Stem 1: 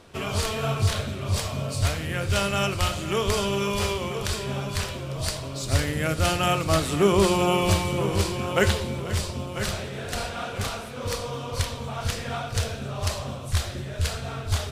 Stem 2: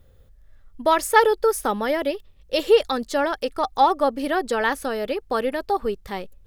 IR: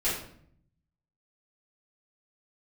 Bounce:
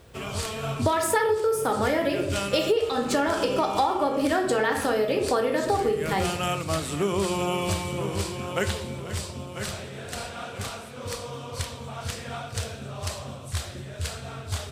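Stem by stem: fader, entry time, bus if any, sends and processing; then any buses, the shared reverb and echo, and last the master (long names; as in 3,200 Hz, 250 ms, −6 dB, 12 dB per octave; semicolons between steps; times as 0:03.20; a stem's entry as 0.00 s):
−4.0 dB, 0.00 s, no send, no processing
+2.0 dB, 0.00 s, send −7.5 dB, no processing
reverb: on, RT60 0.60 s, pre-delay 3 ms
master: high-pass filter 72 Hz; parametric band 8,200 Hz +4.5 dB 0.29 octaves; downward compressor 10 to 1, threshold −20 dBFS, peak gain reduction 17 dB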